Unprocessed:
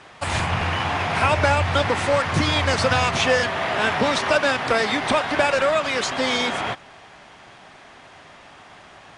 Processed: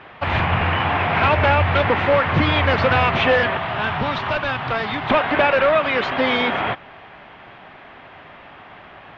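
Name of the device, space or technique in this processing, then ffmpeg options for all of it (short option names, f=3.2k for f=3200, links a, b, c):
synthesiser wavefolder: -filter_complex "[0:a]aeval=exprs='0.224*(abs(mod(val(0)/0.224+3,4)-2)-1)':c=same,lowpass=f=3.1k:w=0.5412,lowpass=f=3.1k:w=1.3066,asettb=1/sr,asplit=3[a][b][c];[a]atrim=end=3.574[d];[b]atrim=start=3.57:end=5.1,asetpts=PTS-STARTPTS,afade=t=in:d=0.004:c=qsin,afade=t=out:st=1.526:d=0.004:c=qsin,equalizer=f=125:t=o:w=1:g=5,equalizer=f=250:t=o:w=1:g=-6,equalizer=f=500:t=o:w=1:g=-9,equalizer=f=2k:t=o:w=1:g=-7[e];[c]atrim=start=5.096[f];[d][e]acrossfade=d=0.004:c1=hsin:c2=qsin[g];[g][f]acrossfade=d=0.004:c1=qsin:c2=hsin,volume=4dB"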